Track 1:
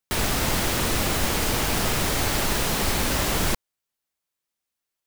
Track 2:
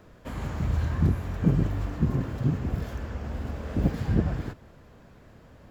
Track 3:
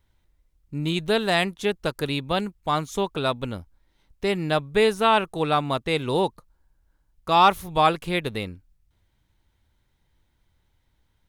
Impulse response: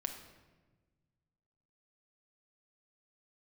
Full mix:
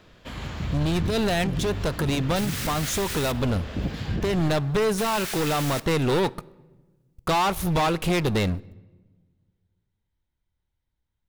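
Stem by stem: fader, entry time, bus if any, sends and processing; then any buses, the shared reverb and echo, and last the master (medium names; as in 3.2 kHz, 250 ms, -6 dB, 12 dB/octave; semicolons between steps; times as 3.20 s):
-6.5 dB, 2.25 s, muted 3.32–4.98 s, send -9 dB, high-pass 1.4 kHz 24 dB/octave
-4.0 dB, 0.00 s, send -11 dB, peaking EQ 3.5 kHz +12.5 dB 1.6 oct
-7.0 dB, 0.00 s, send -15 dB, compression 6:1, threshold -24 dBFS, peak gain reduction 12 dB; bass shelf 250 Hz +4 dB; waveshaping leveller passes 5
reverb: on, RT60 1.3 s, pre-delay 5 ms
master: peak limiter -18 dBFS, peak gain reduction 8 dB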